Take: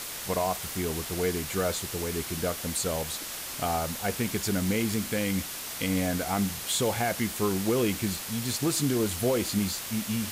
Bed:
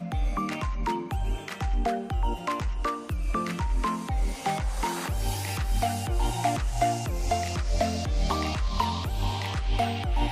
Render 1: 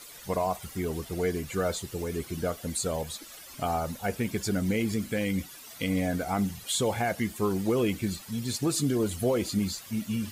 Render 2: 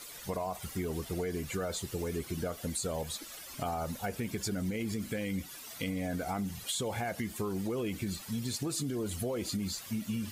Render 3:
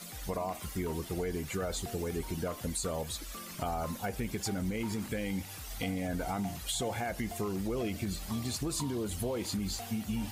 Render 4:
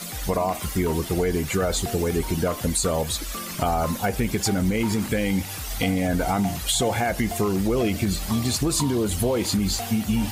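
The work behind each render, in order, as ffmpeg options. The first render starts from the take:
-af "afftdn=nr=14:nf=-37"
-af "alimiter=limit=-21.5dB:level=0:latency=1,acompressor=threshold=-31dB:ratio=6"
-filter_complex "[1:a]volume=-18.5dB[a];[0:a][a]amix=inputs=2:normalize=0"
-af "volume=11.5dB"

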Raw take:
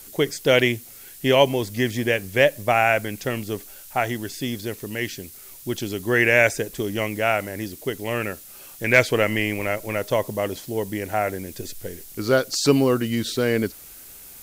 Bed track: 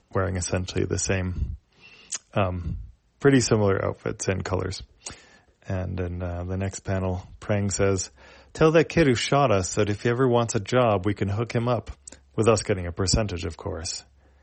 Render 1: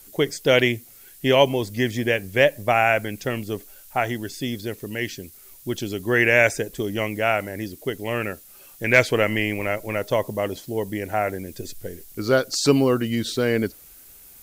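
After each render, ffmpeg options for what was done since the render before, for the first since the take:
-af "afftdn=nr=6:nf=-43"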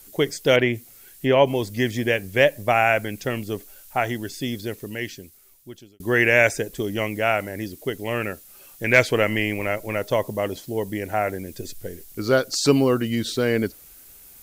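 -filter_complex "[0:a]asettb=1/sr,asplit=3[a][b][c];[a]atrim=end=0.564[d];[b]atrim=start=0.56:end=1.55,asetpts=PTS-STARTPTS,afade=t=in:d=0.004:c=qsin,afade=t=out:st=0.986:d=0.004:c=qsin,acrossover=split=2600[e][f];[f]acompressor=threshold=-40dB:ratio=4:attack=1:release=60[g];[e][g]amix=inputs=2:normalize=0[h];[c]atrim=start=1.546[i];[d][h]acrossfade=d=0.004:c1=hsin:c2=qsin[j];[j][i]acrossfade=d=0.004:c1=qsin:c2=hsin,asplit=2[k][l];[k]atrim=end=6,asetpts=PTS-STARTPTS,afade=t=out:st=4.7:d=1.3[m];[l]atrim=start=6,asetpts=PTS-STARTPTS,afade=t=in:d=0.004:c=hsin[n];[m][n]concat=n=2:v=0:a=1"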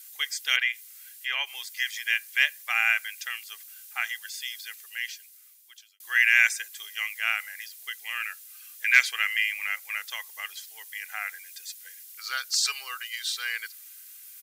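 -af "highpass=f=1.5k:w=0.5412,highpass=f=1.5k:w=1.3066,aecho=1:1:2.5:0.39"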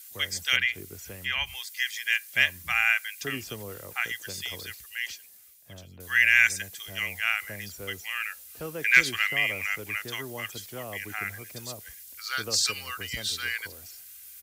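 -filter_complex "[1:a]volume=-19dB[a];[0:a][a]amix=inputs=2:normalize=0"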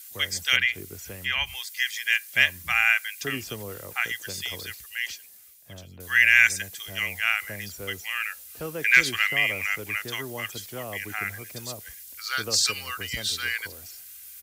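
-af "volume=2.5dB,alimiter=limit=-3dB:level=0:latency=1"

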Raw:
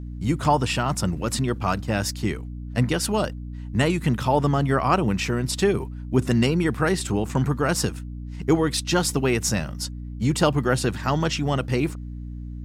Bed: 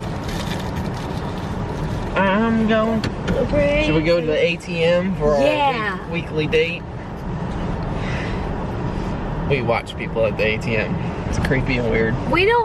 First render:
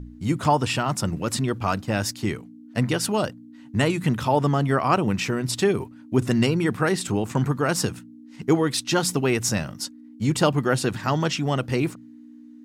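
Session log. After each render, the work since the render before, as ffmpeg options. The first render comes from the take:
-af "bandreject=f=60:t=h:w=4,bandreject=f=120:t=h:w=4,bandreject=f=180:t=h:w=4"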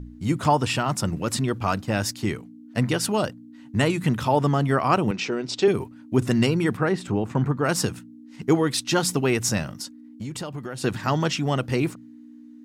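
-filter_complex "[0:a]asettb=1/sr,asplit=3[a][b][c];[a]atrim=end=5.114[d];[b]atrim=start=5.11:end=5.68,asetpts=PTS-STARTPTS,afade=t=in:d=0.004:c=qsin,afade=t=out:st=0.566:d=0.004:c=qsin,highpass=260,equalizer=f=400:t=q:w=4:g=4,equalizer=f=1.1k:t=q:w=4:g=-5,equalizer=f=1.8k:t=q:w=4:g=-6,lowpass=f=6.2k:w=0.5412,lowpass=f=6.2k:w=1.3066[e];[c]atrim=start=5.676[f];[d][e]acrossfade=d=0.004:c1=hsin:c2=qsin[g];[g][f]acrossfade=d=0.004:c1=qsin:c2=hsin,asplit=3[h][i][j];[h]afade=t=out:st=6.76:d=0.02[k];[i]lowpass=f=1.7k:p=1,afade=t=in:st=6.76:d=0.02,afade=t=out:st=7.63:d=0.02[l];[j]afade=t=in:st=7.63:d=0.02[m];[k][l][m]amix=inputs=3:normalize=0,asettb=1/sr,asplit=3[n][o][p];[n]atrim=end=9.814[q];[o]atrim=start=9.81:end=10.84,asetpts=PTS-STARTPTS,afade=t=in:d=0.004:c=qsin,afade=t=out:st=1.026:d=0.004:c=qsin,acompressor=threshold=-29dB:ratio=8:attack=3.2:release=140:knee=1:detection=peak[r];[p]atrim=start=10.836[s];[q][r]acrossfade=d=0.004:c1=hsin:c2=qsin[t];[t][s]acrossfade=d=0.004:c1=qsin:c2=hsin"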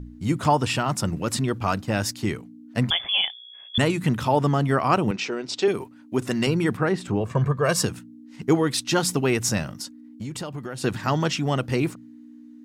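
-filter_complex "[0:a]asettb=1/sr,asplit=3[a][b][c];[a]atrim=end=2.904[d];[b]atrim=start=2.9:end=3.78,asetpts=PTS-STARTPTS,afade=t=in:d=0.004:c=qsin,afade=t=out:st=0.876:d=0.004:c=qsin,lowpass=f=3.1k:t=q:w=0.5098,lowpass=f=3.1k:t=q:w=0.6013,lowpass=f=3.1k:t=q:w=0.9,lowpass=f=3.1k:t=q:w=2.563,afreqshift=-3600[e];[c]atrim=start=3.776[f];[d][e]acrossfade=d=0.004:c1=hsin:c2=qsin[g];[g][f]acrossfade=d=0.004:c1=qsin:c2=hsin,asettb=1/sr,asplit=3[h][i][j];[h]atrim=end=5.164[k];[i]atrim=start=5.16:end=6.47,asetpts=PTS-STARTPTS,afade=t=in:d=0.004:c=qsin,afade=t=out:st=1.306:d=0.004:c=qsin,highpass=f=300:p=1[l];[j]atrim=start=6.466[m];[k][l]acrossfade=d=0.004:c1=hsin:c2=qsin[n];[n][m]acrossfade=d=0.004:c1=qsin:c2=hsin,asettb=1/sr,asplit=3[o][p][q];[o]atrim=end=7.204[r];[p]atrim=start=7.2:end=7.83,asetpts=PTS-STARTPTS,afade=t=in:d=0.004:c=qsin,afade=t=out:st=0.626:d=0.004:c=qsin,aecho=1:1:1.8:0.71,atrim=end_sample=27783[s];[q]atrim=start=7.826[t];[r][s]acrossfade=d=0.004:c1=hsin:c2=qsin[u];[u][t]acrossfade=d=0.004:c1=qsin:c2=hsin"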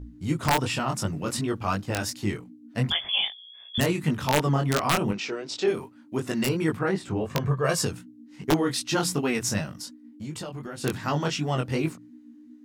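-af "aeval=exprs='(mod(2.99*val(0)+1,2)-1)/2.99':c=same,flanger=delay=19:depth=4.3:speed=2.7"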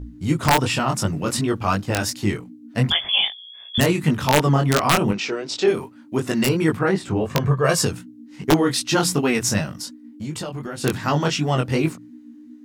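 -af "volume=6dB"

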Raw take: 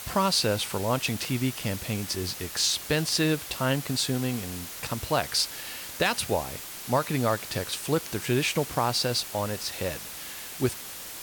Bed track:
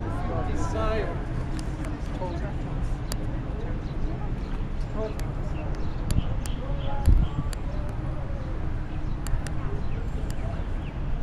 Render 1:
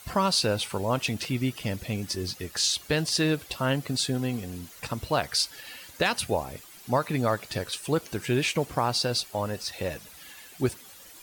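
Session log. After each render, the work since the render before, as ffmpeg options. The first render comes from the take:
-af "afftdn=nr=12:nf=-40"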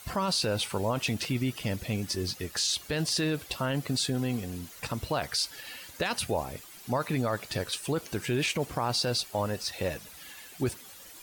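-af "alimiter=limit=-19dB:level=0:latency=1:release=14"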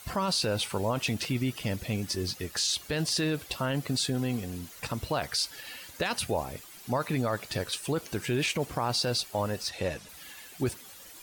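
-filter_complex "[0:a]asettb=1/sr,asplit=3[a][b][c];[a]atrim=end=9.694[d];[b]atrim=start=9.69:end=10.09,asetpts=PTS-STARTPTS,afade=t=in:d=0.004:c=qsin,afade=t=out:st=0.396:d=0.004:c=qsin,lowpass=9.5k[e];[c]atrim=start=10.086[f];[d][e]acrossfade=d=0.004:c1=hsin:c2=qsin[g];[g][f]acrossfade=d=0.004:c1=qsin:c2=hsin"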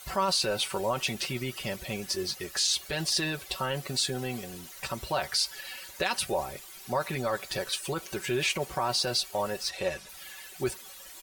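-af "equalizer=f=190:w=1.2:g=-9.5,aecho=1:1:5.3:0.71"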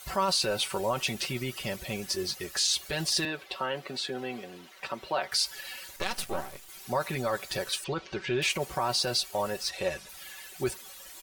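-filter_complex "[0:a]asettb=1/sr,asplit=3[a][b][c];[a]atrim=end=3.254[d];[b]atrim=start=3.25:end=5.32,asetpts=PTS-STARTPTS,afade=t=in:d=0.004:c=qsin,afade=t=out:st=2.066:d=0.004:c=qsin,acrossover=split=200 4100:gain=0.126 1 0.158[e][f][g];[e][f][g]amix=inputs=3:normalize=0[h];[c]atrim=start=5.316[i];[d][h]acrossfade=d=0.004:c1=hsin:c2=qsin[j];[j][i]acrossfade=d=0.004:c1=qsin:c2=hsin,asettb=1/sr,asplit=3[k][l][m];[k]atrim=end=5.964[n];[l]atrim=start=5.96:end=6.69,asetpts=PTS-STARTPTS,afade=t=in:d=0.004:c=qsin,afade=t=out:st=0.726:d=0.004:c=qsin,aeval=exprs='max(val(0),0)':c=same[o];[m]atrim=start=6.686[p];[n][o]acrossfade=d=0.004:c1=hsin:c2=qsin[q];[q][p]acrossfade=d=0.004:c1=qsin:c2=hsin,asettb=1/sr,asplit=3[r][s][t];[r]atrim=end=7.844[u];[s]atrim=start=7.84:end=8.42,asetpts=PTS-STARTPTS,afade=t=in:d=0.004:c=qsin,afade=t=out:st=0.576:d=0.004:c=qsin,lowpass=f=4.8k:w=0.5412,lowpass=f=4.8k:w=1.3066[v];[t]atrim=start=8.416[w];[u][v]acrossfade=d=0.004:c1=hsin:c2=qsin[x];[x][w]acrossfade=d=0.004:c1=qsin:c2=hsin"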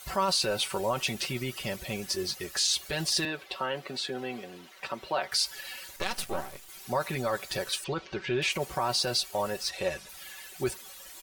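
-filter_complex "[0:a]asettb=1/sr,asplit=3[a][b][c];[a]atrim=end=8.054[d];[b]atrim=start=8.05:end=8.52,asetpts=PTS-STARTPTS,afade=t=in:d=0.004:c=qsin,afade=t=out:st=0.466:d=0.004:c=qsin,equalizer=f=15k:w=0.44:g=-9.5[e];[c]atrim=start=8.516[f];[d][e]acrossfade=d=0.004:c1=hsin:c2=qsin[g];[g][f]acrossfade=d=0.004:c1=qsin:c2=hsin"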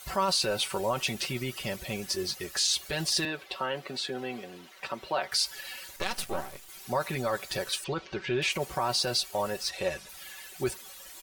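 -af anull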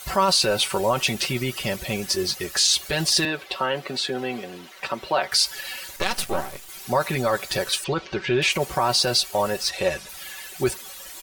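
-af "volume=7.5dB"

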